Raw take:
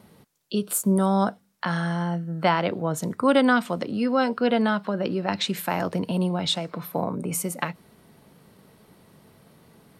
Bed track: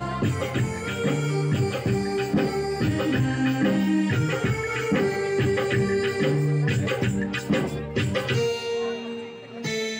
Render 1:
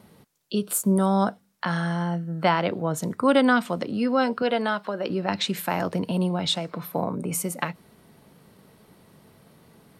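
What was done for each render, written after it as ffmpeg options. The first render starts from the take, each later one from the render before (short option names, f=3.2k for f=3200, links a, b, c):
-filter_complex "[0:a]asettb=1/sr,asplit=3[a][b][c];[a]atrim=end=4.424[d];[b]atrim=start=4.42:end=5.1,asetpts=PTS-STARTPTS,afade=t=in:d=0.004:c=qsin,afade=t=out:st=0.676:d=0.004:c=qsin,bass=f=250:g=-12,treble=f=4k:g=1[e];[c]atrim=start=5.096[f];[d][e]acrossfade=d=0.004:c1=hsin:c2=qsin[g];[g][f]acrossfade=d=0.004:c1=qsin:c2=hsin"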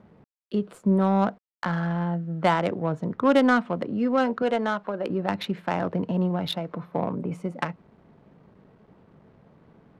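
-af "acrusher=bits=8:mix=0:aa=0.000001,adynamicsmooth=sensitivity=1:basefreq=1.4k"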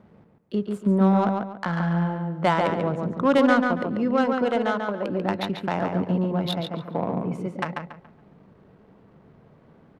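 -filter_complex "[0:a]asplit=2[a][b];[b]adelay=141,lowpass=f=4k:p=1,volume=-4dB,asplit=2[c][d];[d]adelay=141,lowpass=f=4k:p=1,volume=0.31,asplit=2[e][f];[f]adelay=141,lowpass=f=4k:p=1,volume=0.31,asplit=2[g][h];[h]adelay=141,lowpass=f=4k:p=1,volume=0.31[i];[a][c][e][g][i]amix=inputs=5:normalize=0"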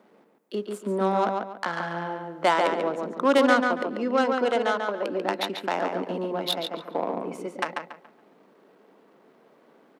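-af "highpass=f=270:w=0.5412,highpass=f=270:w=1.3066,highshelf=f=4.4k:g=9"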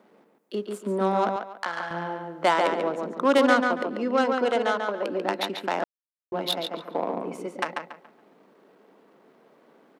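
-filter_complex "[0:a]asettb=1/sr,asplit=3[a][b][c];[a]atrim=end=1.364[d];[b]atrim=start=1.36:end=1.91,asetpts=PTS-STARTPTS,afade=t=in:d=0.004:c=qsin,afade=t=out:st=0.546:d=0.004:c=qsin,highpass=f=580:p=1[e];[c]atrim=start=1.906[f];[d][e]acrossfade=d=0.004:c1=hsin:c2=qsin[g];[g][f]acrossfade=d=0.004:c1=qsin:c2=hsin,asplit=3[h][i][j];[h]atrim=end=5.84,asetpts=PTS-STARTPTS,afade=t=out:st=5.836:d=0.004:c=hsin[k];[i]atrim=start=5.84:end=6.32,asetpts=PTS-STARTPTS,volume=0[l];[j]atrim=start=6.32,asetpts=PTS-STARTPTS,afade=t=in:d=0.004:c=hsin[m];[k][l][m]concat=n=3:v=0:a=1"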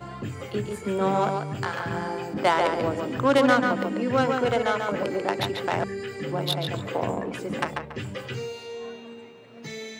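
-filter_complex "[1:a]volume=-9.5dB[a];[0:a][a]amix=inputs=2:normalize=0"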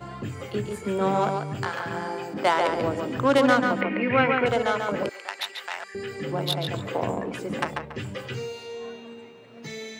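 -filter_complex "[0:a]asettb=1/sr,asplit=3[a][b][c];[a]atrim=end=1.694[d];[b]atrim=start=1.69:end=2.69,asetpts=PTS-STARTPTS,afade=t=in:d=0.004:c=qsin,afade=t=out:st=0.996:d=0.004:c=qsin,lowshelf=f=130:g=-11[e];[c]atrim=start=2.686[f];[d][e]acrossfade=d=0.004:c1=hsin:c2=qsin[g];[g][f]acrossfade=d=0.004:c1=qsin:c2=hsin,asettb=1/sr,asplit=3[h][i][j];[h]atrim=end=3.814[k];[i]atrim=start=3.81:end=4.46,asetpts=PTS-STARTPTS,afade=t=in:d=0.004:c=qsin,afade=t=out:st=0.646:d=0.004:c=qsin,lowpass=f=2.3k:t=q:w=6.5[l];[j]atrim=start=4.456[m];[k][l]acrossfade=d=0.004:c1=hsin:c2=qsin[n];[n][m]acrossfade=d=0.004:c1=qsin:c2=hsin,asettb=1/sr,asplit=3[o][p][q];[o]atrim=end=5.094[r];[p]atrim=start=5.09:end=5.95,asetpts=PTS-STARTPTS,afade=t=in:d=0.004:c=qsin,afade=t=out:st=0.856:d=0.004:c=qsin,highpass=1.4k[s];[q]atrim=start=5.946[t];[r][s]acrossfade=d=0.004:c1=hsin:c2=qsin[u];[u][t]acrossfade=d=0.004:c1=qsin:c2=hsin"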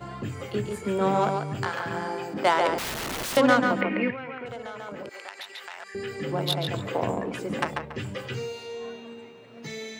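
-filter_complex "[0:a]asettb=1/sr,asplit=3[a][b][c];[a]atrim=end=2.784[d];[b]atrim=start=2.78:end=3.37,asetpts=PTS-STARTPTS,afade=t=in:d=0.004:c=qsin,afade=t=out:st=0.586:d=0.004:c=qsin,aeval=exprs='(mod(22.4*val(0)+1,2)-1)/22.4':c=same[e];[c]atrim=start=3.366[f];[d][e]acrossfade=d=0.004:c1=hsin:c2=qsin[g];[g][f]acrossfade=d=0.004:c1=qsin:c2=hsin,asettb=1/sr,asplit=3[h][i][j];[h]atrim=end=4.104[k];[i]atrim=start=4.1:end=5.9,asetpts=PTS-STARTPTS,afade=t=in:d=0.004:c=qsin,afade=t=out:st=1.796:d=0.004:c=qsin,acompressor=threshold=-35dB:ratio=5:attack=3.2:release=140:knee=1:detection=peak[l];[j]atrim=start=5.896[m];[k][l]acrossfade=d=0.004:c1=hsin:c2=qsin[n];[n][m]acrossfade=d=0.004:c1=qsin:c2=hsin"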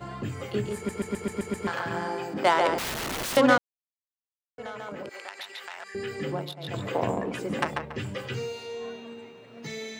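-filter_complex "[0:a]asplit=12[a][b][c][d][e][f][g][h][i][j][k][l];[a]atrim=end=0.892[m];[b]atrim=start=0.758:end=0.892[n];[c]atrim=start=0.758:end=0.892[o];[d]atrim=start=0.758:end=0.892[p];[e]atrim=start=0.758:end=0.892[q];[f]atrim=start=0.758:end=0.892[r];[g]atrim=start=0.758:end=0.892[s];[h]atrim=start=1.668:end=3.58,asetpts=PTS-STARTPTS,afade=t=out:st=1.908:d=0.004:c=hsin[t];[i]atrim=start=3.58:end=4.58,asetpts=PTS-STARTPTS,volume=0[u];[j]atrim=start=4.58:end=6.54,asetpts=PTS-STARTPTS,afade=t=in:d=0.004:c=hsin,afade=t=out:st=1.69:d=0.27:silence=0.11885[v];[k]atrim=start=6.54:end=6.56,asetpts=PTS-STARTPTS,volume=-18.5dB[w];[l]atrim=start=6.56,asetpts=PTS-STARTPTS,afade=t=in:d=0.27:silence=0.11885[x];[m][n]acrossfade=d=0.004:c1=hsin:c2=hsin[y];[y][o]acrossfade=d=0.004:c1=hsin:c2=hsin[z];[z][p]acrossfade=d=0.004:c1=hsin:c2=hsin[aa];[aa][q]acrossfade=d=0.004:c1=hsin:c2=hsin[ab];[ab][r]acrossfade=d=0.004:c1=hsin:c2=hsin[ac];[ac][s]acrossfade=d=0.004:c1=hsin:c2=hsin[ad];[t][u][v][w][x]concat=n=5:v=0:a=1[ae];[ad][ae]acrossfade=d=0.004:c1=hsin:c2=hsin"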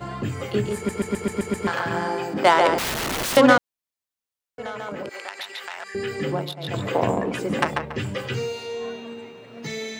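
-af "volume=5.5dB,alimiter=limit=-3dB:level=0:latency=1"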